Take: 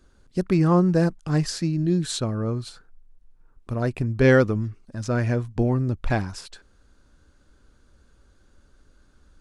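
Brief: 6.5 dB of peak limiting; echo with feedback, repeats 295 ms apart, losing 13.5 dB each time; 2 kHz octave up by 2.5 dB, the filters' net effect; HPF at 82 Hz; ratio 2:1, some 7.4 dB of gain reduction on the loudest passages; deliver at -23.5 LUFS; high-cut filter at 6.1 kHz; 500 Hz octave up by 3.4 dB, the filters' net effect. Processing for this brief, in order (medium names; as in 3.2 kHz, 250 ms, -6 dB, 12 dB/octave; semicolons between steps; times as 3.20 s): high-pass 82 Hz; low-pass 6.1 kHz; peaking EQ 500 Hz +4 dB; peaking EQ 2 kHz +3 dB; compression 2:1, threshold -23 dBFS; peak limiter -17 dBFS; feedback delay 295 ms, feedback 21%, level -13.5 dB; trim +4.5 dB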